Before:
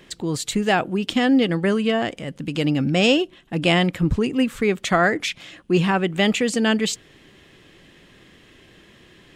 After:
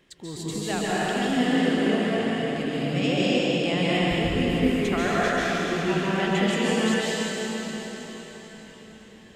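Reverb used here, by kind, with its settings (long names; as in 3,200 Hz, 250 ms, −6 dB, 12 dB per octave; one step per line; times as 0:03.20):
dense smooth reverb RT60 4.9 s, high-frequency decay 0.9×, pre-delay 120 ms, DRR −9 dB
level −12.5 dB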